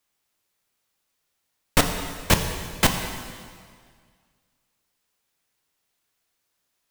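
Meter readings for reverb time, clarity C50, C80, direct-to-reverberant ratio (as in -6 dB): 1.9 s, 6.5 dB, 7.5 dB, 4.5 dB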